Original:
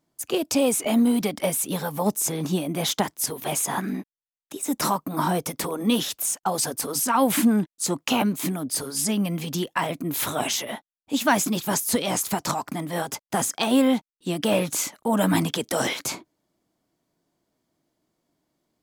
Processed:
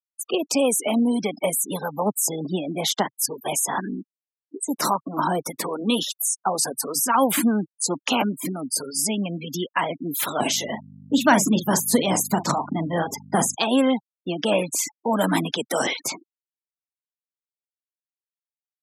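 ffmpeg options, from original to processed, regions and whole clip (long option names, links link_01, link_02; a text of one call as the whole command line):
ffmpeg -i in.wav -filter_complex "[0:a]asettb=1/sr,asplit=3[link_01][link_02][link_03];[link_01]atrim=end=10.404[link_04];[link_02]atrim=start=10.4:end=13.55,asetpts=PTS-STARTPTS,afade=type=in:duration=0.004:curve=qsin,afade=type=out:start_time=3.146:duration=0.004:curve=qsin,lowshelf=frequency=260:gain=11.5,aeval=exprs='val(0)+0.0282*(sin(2*PI*50*n/s)+sin(2*PI*2*50*n/s)/2+sin(2*PI*3*50*n/s)/3+sin(2*PI*4*50*n/s)/4+sin(2*PI*5*50*n/s)/5)':channel_layout=same,asplit=2[link_05][link_06];[link_06]adelay=42,volume=-10dB[link_07];[link_05][link_07]amix=inputs=2:normalize=0,atrim=end_sample=138915[link_08];[link_03]atrim=start=13.546[link_09];[link_04][link_08]acrossfade=duration=0.004:curve1=hsin:curve2=qsin[link_10];[link_10][link_09]acrossfade=duration=0.004:curve1=qsin:curve2=hsin,afftfilt=real='re*gte(hypot(re,im),0.0355)':imag='im*gte(hypot(re,im),0.0355)':win_size=1024:overlap=0.75,highpass=frequency=130:width=0.5412,highpass=frequency=130:width=1.3066,lowshelf=frequency=170:gain=-10.5,volume=2.5dB" out.wav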